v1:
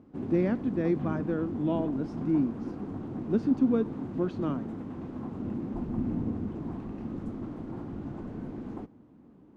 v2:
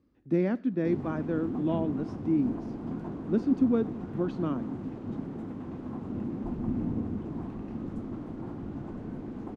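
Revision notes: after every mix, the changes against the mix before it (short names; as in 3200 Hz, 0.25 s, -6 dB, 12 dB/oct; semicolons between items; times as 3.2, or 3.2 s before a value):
background: entry +0.70 s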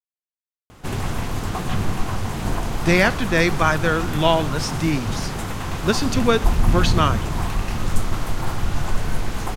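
speech: entry +2.55 s; master: remove band-pass 270 Hz, Q 2.8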